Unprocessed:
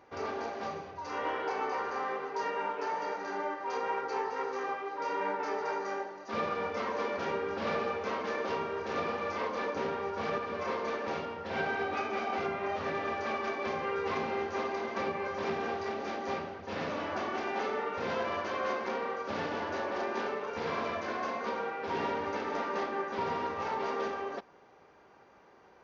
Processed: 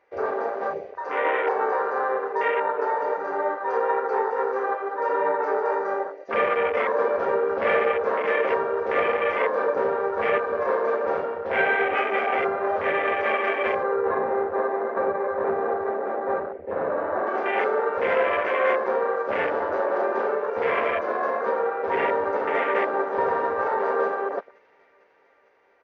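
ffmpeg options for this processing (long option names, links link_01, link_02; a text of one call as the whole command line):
ffmpeg -i in.wav -filter_complex "[0:a]asettb=1/sr,asplit=3[link_01][link_02][link_03];[link_01]atrim=end=13.834[link_04];[link_02]atrim=start=13.83:end=17.27,asetpts=PTS-STARTPTS,afade=type=in:duration=0.004:curve=qsin,afade=type=out:start_time=3.436:duration=0.004:curve=qsin,lowpass=1600[link_05];[link_03]atrim=start=17.266[link_06];[link_04][link_05]acrossfade=duration=0.004:curve1=hsin:curve2=qsin[link_07];[link_07][link_06]acrossfade=duration=0.004:curve1=qsin:curve2=hsin,asplit=2[link_08][link_09];[link_09]afade=type=in:start_time=21.94:duration=0.01,afade=type=out:start_time=22.78:duration=0.01,aecho=0:1:450|900|1350|1800|2250|2700|3150|3600|4050|4500|4950:0.354813|0.248369|0.173859|0.121701|0.0851907|0.0596335|0.0417434|0.0292204|0.0204543|0.014318|0.0100226[link_10];[link_08][link_10]amix=inputs=2:normalize=0,afwtdn=0.0158,equalizer=frequency=125:width_type=o:width=1:gain=-7,equalizer=frequency=250:width_type=o:width=1:gain=-5,equalizer=frequency=500:width_type=o:width=1:gain=10,equalizer=frequency=2000:width_type=o:width=1:gain=12,volume=4.5dB" out.wav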